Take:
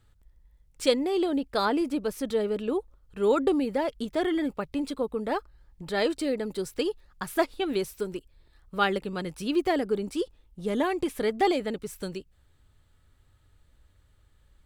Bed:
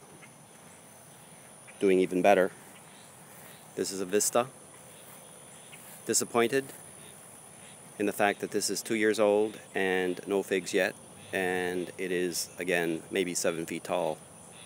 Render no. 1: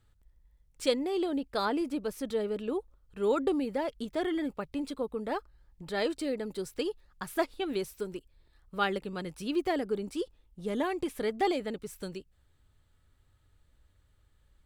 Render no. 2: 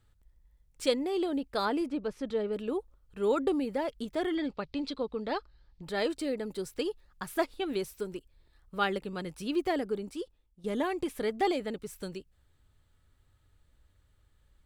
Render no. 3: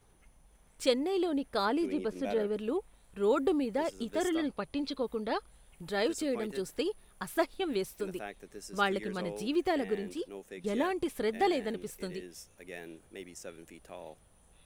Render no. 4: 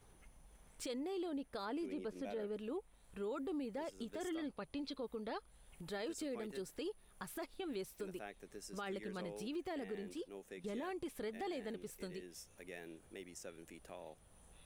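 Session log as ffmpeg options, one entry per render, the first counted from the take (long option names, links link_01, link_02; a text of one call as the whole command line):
ffmpeg -i in.wav -af "volume=-4.5dB" out.wav
ffmpeg -i in.wav -filter_complex "[0:a]asettb=1/sr,asplit=3[link_01][link_02][link_03];[link_01]atrim=end=1.864[link_04];[link_02]atrim=start=1.86:end=2.53,asetpts=PTS-STARTPTS,afade=type=in:duration=0.004:curve=qsin,afade=type=out:start_time=0.666:duration=0.004:curve=qsin,adynamicsmooth=sensitivity=2:basefreq=4800[link_05];[link_03]atrim=start=2.526[link_06];[link_04][link_05]acrossfade=duration=0.004:curve1=hsin:curve2=qsin[link_07];[link_07][link_06]acrossfade=duration=0.004:curve1=qsin:curve2=hsin,asettb=1/sr,asplit=3[link_08][link_09][link_10];[link_08]atrim=end=4.354[link_11];[link_09]atrim=start=4.35:end=5.83,asetpts=PTS-STARTPTS,afade=type=in:duration=0.004:curve=qsin,afade=type=out:start_time=1.476:duration=0.004:curve=qsin,lowpass=frequency=4400:width_type=q:width=2.6[link_12];[link_10]atrim=start=5.826[link_13];[link_11][link_12]acrossfade=duration=0.004:curve1=hsin:curve2=qsin[link_14];[link_14][link_13]acrossfade=duration=0.004:curve1=qsin:curve2=hsin,asplit=2[link_15][link_16];[link_15]atrim=end=10.64,asetpts=PTS-STARTPTS,afade=type=out:start_time=9.8:duration=0.84:silence=0.223872[link_17];[link_16]atrim=start=10.64,asetpts=PTS-STARTPTS,afade=type=in:duration=0.004:curve=hsin:silence=0.223872[link_18];[link_17][link_18]concat=n=2:v=0:a=1" out.wav
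ffmpeg -i in.wav -i bed.wav -filter_complex "[1:a]volume=-16.5dB[link_01];[0:a][link_01]amix=inputs=2:normalize=0" out.wav
ffmpeg -i in.wav -af "alimiter=level_in=1.5dB:limit=-24dB:level=0:latency=1:release=24,volume=-1.5dB,acompressor=threshold=-57dB:ratio=1.5" out.wav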